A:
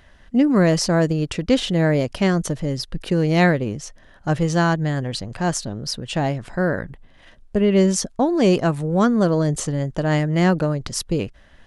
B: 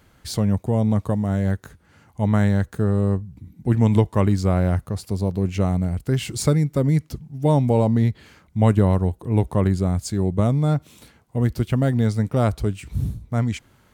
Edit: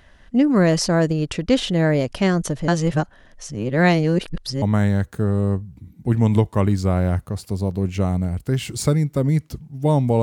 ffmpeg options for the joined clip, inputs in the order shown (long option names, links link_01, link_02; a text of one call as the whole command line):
ffmpeg -i cue0.wav -i cue1.wav -filter_complex "[0:a]apad=whole_dur=10.22,atrim=end=10.22,asplit=2[link_01][link_02];[link_01]atrim=end=2.682[link_03];[link_02]atrim=start=2.678:end=4.622,asetpts=PTS-STARTPTS,areverse[link_04];[1:a]atrim=start=2.218:end=7.82[link_05];[link_03][link_04]acrossfade=duration=0.004:curve1=hsin:curve2=hsin[link_06];[link_06][link_05]acrossfade=duration=0.004:curve1=hsin:curve2=hsin" out.wav